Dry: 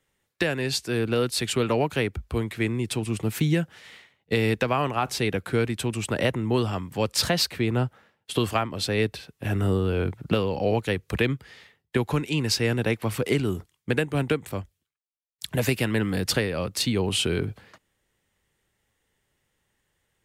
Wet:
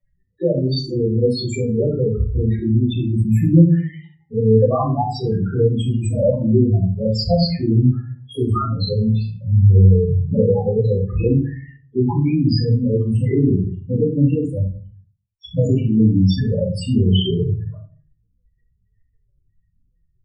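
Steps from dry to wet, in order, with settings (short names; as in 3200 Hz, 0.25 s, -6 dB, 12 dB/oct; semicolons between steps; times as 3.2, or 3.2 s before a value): LFO notch saw up 1.9 Hz 320–4300 Hz; loudest bins only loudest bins 4; shoebox room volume 240 m³, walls furnished, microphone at 5.9 m; gain +1 dB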